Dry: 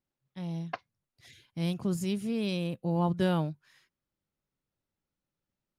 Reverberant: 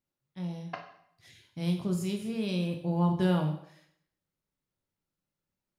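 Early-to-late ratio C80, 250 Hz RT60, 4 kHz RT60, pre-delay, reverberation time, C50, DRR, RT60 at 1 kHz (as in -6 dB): 11.5 dB, 0.70 s, 0.60 s, 5 ms, 0.70 s, 8.5 dB, 3.0 dB, 0.65 s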